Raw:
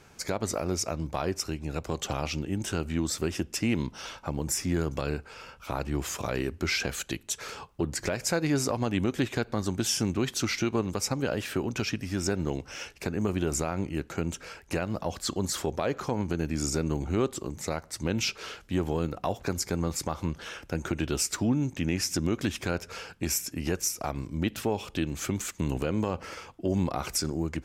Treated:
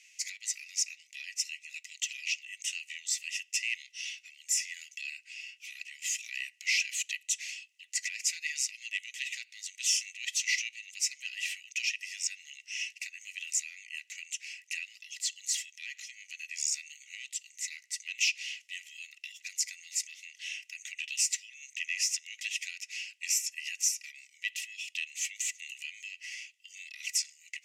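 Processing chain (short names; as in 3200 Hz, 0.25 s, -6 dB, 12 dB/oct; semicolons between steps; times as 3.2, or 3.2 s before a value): overdrive pedal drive 9 dB, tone 3300 Hz, clips at -15 dBFS; rippled Chebyshev high-pass 1900 Hz, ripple 9 dB; gain +6 dB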